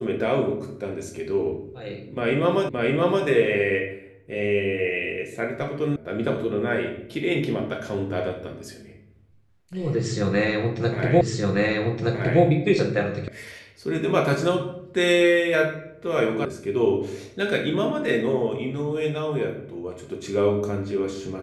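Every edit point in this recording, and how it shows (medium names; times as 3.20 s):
2.69 s: repeat of the last 0.57 s
5.96 s: sound stops dead
11.21 s: repeat of the last 1.22 s
13.28 s: sound stops dead
16.45 s: sound stops dead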